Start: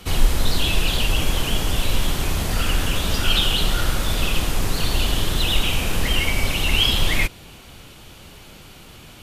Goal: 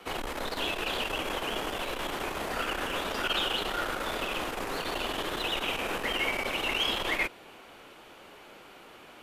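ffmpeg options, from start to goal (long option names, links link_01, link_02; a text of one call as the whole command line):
ffmpeg -i in.wav -filter_complex "[0:a]aeval=exprs='(tanh(3.98*val(0)+0.35)-tanh(0.35))/3.98':channel_layout=same,acrossover=split=290 2400:gain=0.0708 1 0.224[link_01][link_02][link_03];[link_01][link_02][link_03]amix=inputs=3:normalize=0" out.wav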